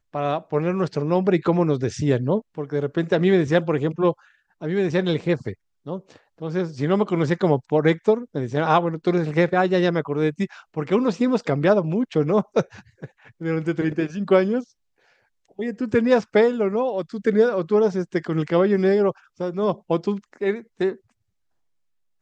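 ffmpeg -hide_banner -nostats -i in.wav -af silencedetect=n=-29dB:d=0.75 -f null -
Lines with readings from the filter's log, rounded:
silence_start: 14.61
silence_end: 15.59 | silence_duration: 0.98
silence_start: 20.93
silence_end: 22.22 | silence_duration: 1.29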